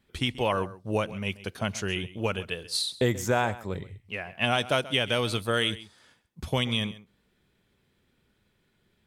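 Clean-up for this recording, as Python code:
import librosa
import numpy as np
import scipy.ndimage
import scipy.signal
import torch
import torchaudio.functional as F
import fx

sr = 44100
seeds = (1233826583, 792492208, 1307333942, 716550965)

y = fx.fix_echo_inverse(x, sr, delay_ms=133, level_db=-17.5)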